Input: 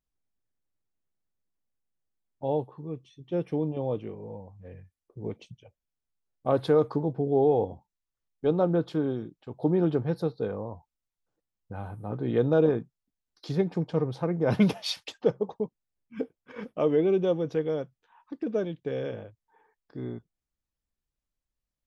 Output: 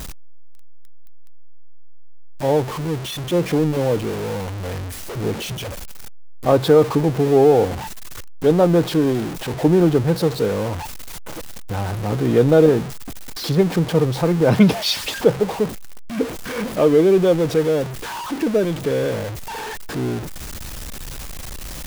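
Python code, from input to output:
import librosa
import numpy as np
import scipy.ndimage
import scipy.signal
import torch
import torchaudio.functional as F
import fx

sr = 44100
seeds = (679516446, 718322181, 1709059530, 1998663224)

y = x + 0.5 * 10.0 ** (-32.0 / 20.0) * np.sign(x)
y = y * 10.0 ** (8.5 / 20.0)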